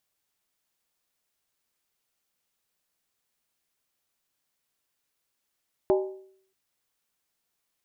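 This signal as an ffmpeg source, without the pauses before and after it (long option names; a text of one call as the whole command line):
ffmpeg -f lavfi -i "aevalsrc='0.141*pow(10,-3*t/0.62)*sin(2*PI*382*t)+0.0708*pow(10,-3*t/0.491)*sin(2*PI*608.9*t)+0.0355*pow(10,-3*t/0.424)*sin(2*PI*816*t)+0.0178*pow(10,-3*t/0.409)*sin(2*PI*877.1*t)+0.00891*pow(10,-3*t/0.381)*sin(2*PI*1013.4*t)':duration=0.63:sample_rate=44100" out.wav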